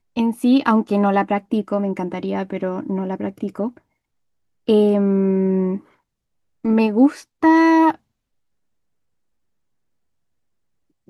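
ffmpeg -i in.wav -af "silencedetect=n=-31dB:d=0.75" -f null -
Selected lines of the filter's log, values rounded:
silence_start: 3.69
silence_end: 4.68 | silence_duration: 0.99
silence_start: 5.78
silence_end: 6.65 | silence_duration: 0.87
silence_start: 7.95
silence_end: 11.10 | silence_duration: 3.15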